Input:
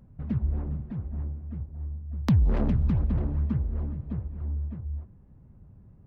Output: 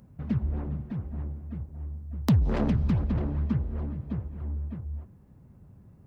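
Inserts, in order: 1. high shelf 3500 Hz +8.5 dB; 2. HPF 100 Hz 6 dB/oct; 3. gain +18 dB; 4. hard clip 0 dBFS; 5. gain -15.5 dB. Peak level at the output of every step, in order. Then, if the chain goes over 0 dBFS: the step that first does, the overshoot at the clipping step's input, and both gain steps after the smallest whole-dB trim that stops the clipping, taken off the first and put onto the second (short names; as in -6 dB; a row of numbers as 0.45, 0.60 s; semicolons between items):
-8.0, -8.0, +10.0, 0.0, -15.5 dBFS; step 3, 10.0 dB; step 3 +8 dB, step 5 -5.5 dB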